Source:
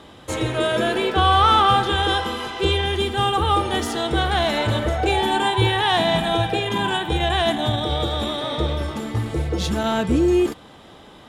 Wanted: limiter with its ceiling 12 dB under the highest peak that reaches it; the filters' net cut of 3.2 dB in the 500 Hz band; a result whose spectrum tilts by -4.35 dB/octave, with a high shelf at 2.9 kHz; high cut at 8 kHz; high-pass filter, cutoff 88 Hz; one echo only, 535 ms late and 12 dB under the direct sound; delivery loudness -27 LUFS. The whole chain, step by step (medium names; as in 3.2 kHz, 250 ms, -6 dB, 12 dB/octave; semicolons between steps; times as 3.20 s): high-pass 88 Hz; low-pass 8 kHz; peaking EQ 500 Hz -5 dB; treble shelf 2.9 kHz +3.5 dB; peak limiter -17 dBFS; delay 535 ms -12 dB; trim -1.5 dB